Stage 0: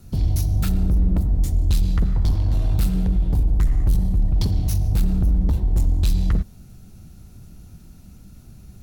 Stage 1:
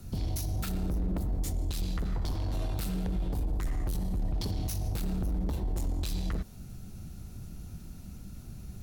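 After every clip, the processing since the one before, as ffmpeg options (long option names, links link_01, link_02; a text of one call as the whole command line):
ffmpeg -i in.wav -filter_complex "[0:a]acrossover=split=270[link_01][link_02];[link_01]acompressor=threshold=-27dB:ratio=6[link_03];[link_03][link_02]amix=inputs=2:normalize=0,alimiter=level_in=0.5dB:limit=-24dB:level=0:latency=1:release=46,volume=-0.5dB" out.wav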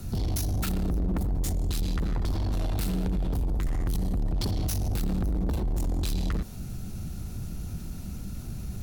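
ffmpeg -i in.wav -af "asoftclip=type=tanh:threshold=-32dB,volume=8.5dB" out.wav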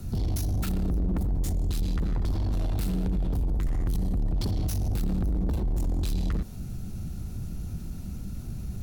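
ffmpeg -i in.wav -af "lowshelf=frequency=470:gain=5,volume=-4dB" out.wav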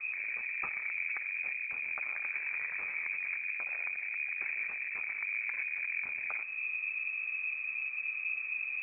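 ffmpeg -i in.wav -af "lowpass=frequency=2200:width_type=q:width=0.5098,lowpass=frequency=2200:width_type=q:width=0.6013,lowpass=frequency=2200:width_type=q:width=0.9,lowpass=frequency=2200:width_type=q:width=2.563,afreqshift=-2600,afftfilt=real='re*lt(hypot(re,im),0.224)':imag='im*lt(hypot(re,im),0.224)':win_size=1024:overlap=0.75" out.wav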